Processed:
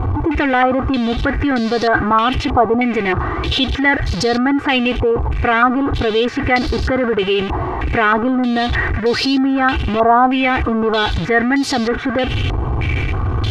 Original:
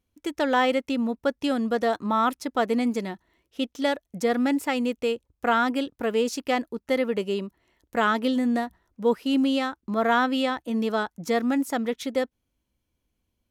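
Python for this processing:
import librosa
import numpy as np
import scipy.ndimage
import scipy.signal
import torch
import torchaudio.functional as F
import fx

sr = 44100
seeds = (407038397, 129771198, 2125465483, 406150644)

p1 = x + 0.5 * 10.0 ** (-26.5 / 20.0) * np.sign(x)
p2 = fx.peak_eq(p1, sr, hz=110.0, db=14.5, octaves=1.4)
p3 = p2 + 0.66 * np.pad(p2, (int(2.6 * sr / 1000.0), 0))[:len(p2)]
p4 = fx.over_compress(p3, sr, threshold_db=-24.0, ratio=-1.0)
p5 = p3 + (p4 * 10.0 ** (-1.0 / 20.0))
y = fx.filter_held_lowpass(p5, sr, hz=3.2, low_hz=980.0, high_hz=4500.0)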